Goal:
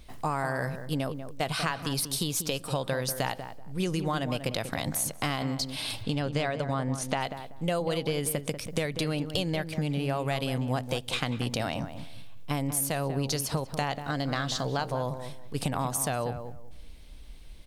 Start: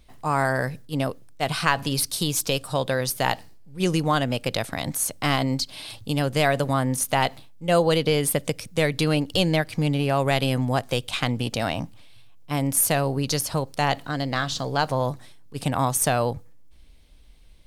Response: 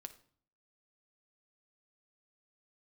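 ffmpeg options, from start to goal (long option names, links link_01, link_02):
-filter_complex "[0:a]asettb=1/sr,asplit=3[link_01][link_02][link_03];[link_01]atrim=end=6.034[link_04];[link_02]atrim=start=6.03:end=7.21,asetpts=PTS-STARTPTS,afade=type=in:duration=0.004:curve=qsin,afade=type=out:start_time=1.176:duration=0.004:curve=qsin,lowpass=5900[link_05];[link_03]atrim=start=7.206[link_06];[link_04][link_05]acrossfade=duration=0.004:curve1=hsin:curve2=qsin[link_07];[link_07][link_06]acrossfade=duration=0.004:curve1=qsin:curve2=hsin,acompressor=threshold=-32dB:ratio=6,asplit=2[link_08][link_09];[link_09]adelay=191,lowpass=frequency=1300:poles=1,volume=-8.5dB,asplit=2[link_10][link_11];[link_11]adelay=191,lowpass=frequency=1300:poles=1,volume=0.23,asplit=2[link_12][link_13];[link_13]adelay=191,lowpass=frequency=1300:poles=1,volume=0.23[link_14];[link_08][link_10][link_12][link_14]amix=inputs=4:normalize=0,volume=4.5dB"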